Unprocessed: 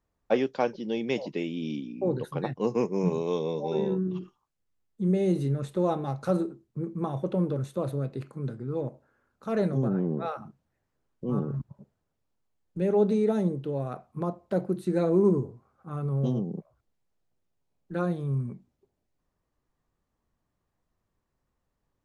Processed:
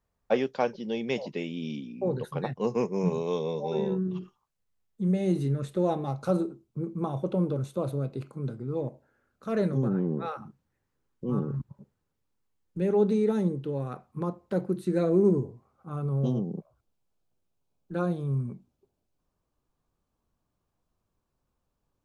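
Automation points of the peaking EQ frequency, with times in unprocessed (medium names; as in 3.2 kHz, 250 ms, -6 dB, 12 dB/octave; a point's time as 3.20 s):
peaking EQ -10 dB 0.24 oct
5.04 s 310 Hz
6.16 s 1.8 kHz
8.53 s 1.8 kHz
9.79 s 660 Hz
14.75 s 660 Hz
15.95 s 1.9 kHz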